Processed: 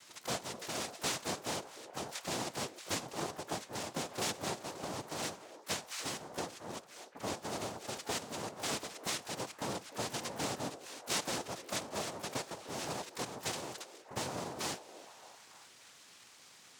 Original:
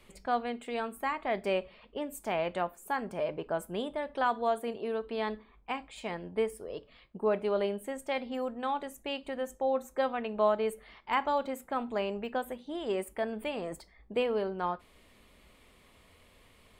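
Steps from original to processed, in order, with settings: compressor 4:1, threshold -34 dBFS, peak gain reduction 11 dB; tilt shelf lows -7.5 dB, about 920 Hz; noise vocoder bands 2; on a send: delay with a stepping band-pass 0.301 s, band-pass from 430 Hz, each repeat 0.7 oct, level -10.5 dB; on the sum: harmoniser +12 st -13 dB

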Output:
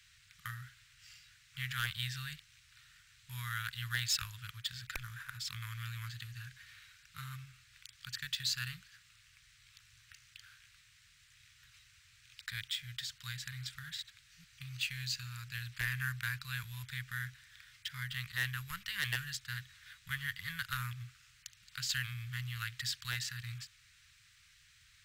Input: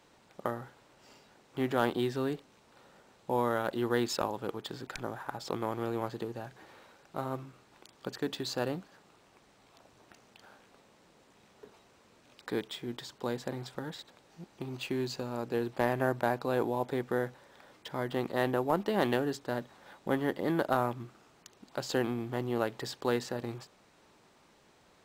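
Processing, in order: inverse Chebyshev band-stop 230–820 Hz, stop band 50 dB; wavefolder -27.5 dBFS; gain +4.5 dB

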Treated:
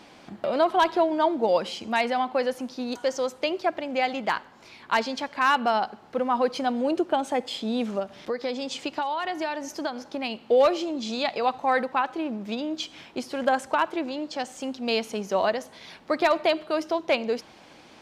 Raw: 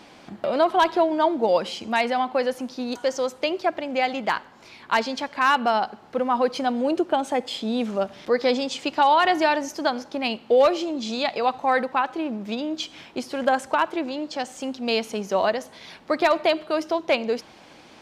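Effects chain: 7.99–10.48 compressor 6:1, threshold -24 dBFS, peak gain reduction 9.5 dB; gain -2 dB

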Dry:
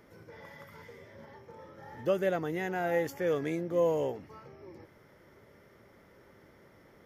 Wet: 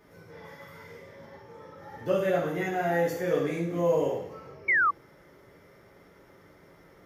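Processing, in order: two-slope reverb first 0.59 s, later 1.7 s, DRR -6 dB; painted sound fall, 4.68–4.91, 1100–2300 Hz -19 dBFS; gain -3.5 dB

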